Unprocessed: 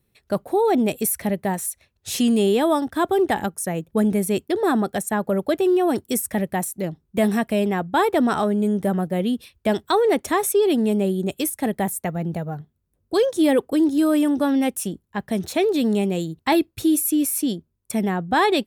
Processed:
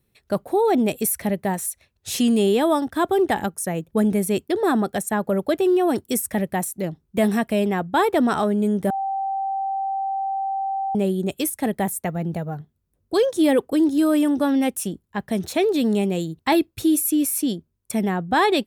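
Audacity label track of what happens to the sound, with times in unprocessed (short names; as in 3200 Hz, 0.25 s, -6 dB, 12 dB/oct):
8.900000	10.950000	bleep 779 Hz -22 dBFS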